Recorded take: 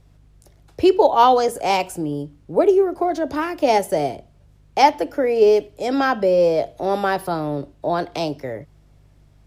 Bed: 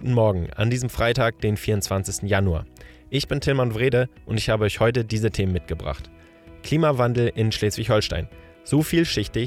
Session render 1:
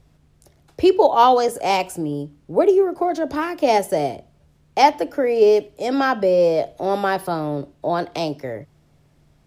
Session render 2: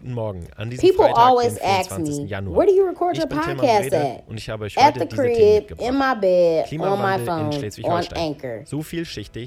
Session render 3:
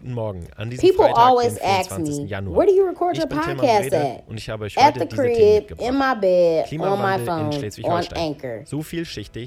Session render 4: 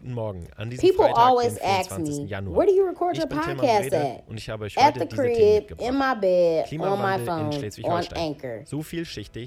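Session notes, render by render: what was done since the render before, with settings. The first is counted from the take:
hum removal 50 Hz, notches 2
mix in bed −7.5 dB
no processing that can be heard
level −3.5 dB

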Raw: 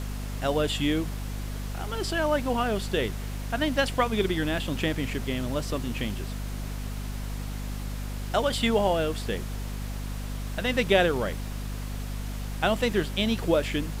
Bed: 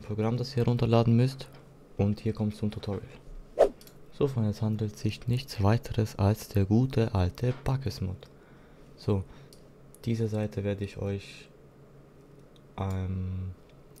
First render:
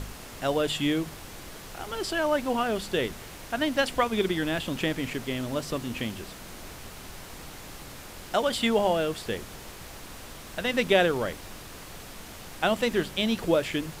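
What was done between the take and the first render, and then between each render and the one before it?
hum removal 50 Hz, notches 5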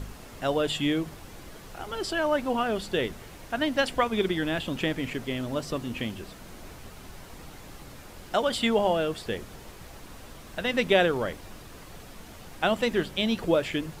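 broadband denoise 6 dB, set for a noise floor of −44 dBFS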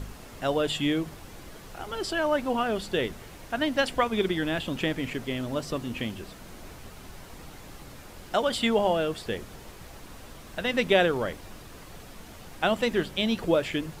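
no processing that can be heard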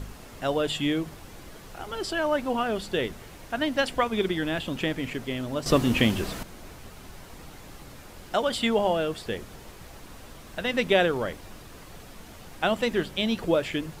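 0:05.66–0:06.43: clip gain +10.5 dB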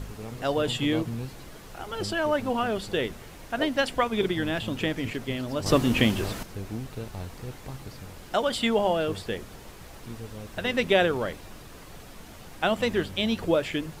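mix in bed −11 dB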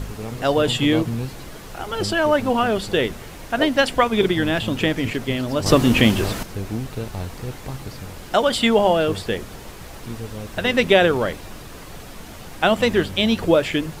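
level +7.5 dB
brickwall limiter −3 dBFS, peak gain reduction 2.5 dB

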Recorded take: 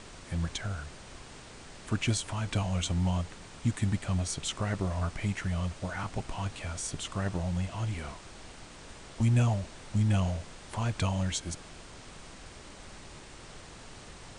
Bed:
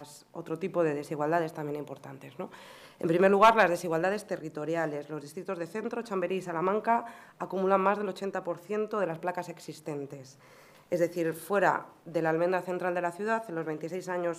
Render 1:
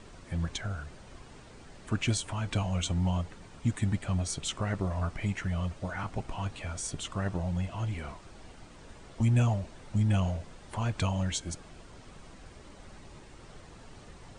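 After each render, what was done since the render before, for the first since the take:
broadband denoise 8 dB, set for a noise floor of −49 dBFS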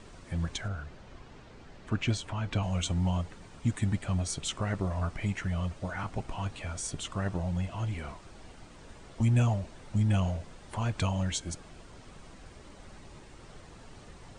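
0:00.68–0:02.63: high-frequency loss of the air 88 metres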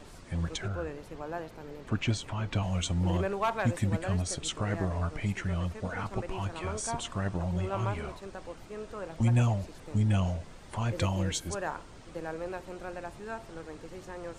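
mix in bed −10 dB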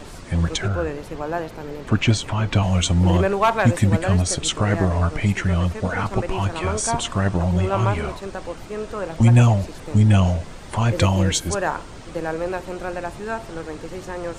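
level +11.5 dB

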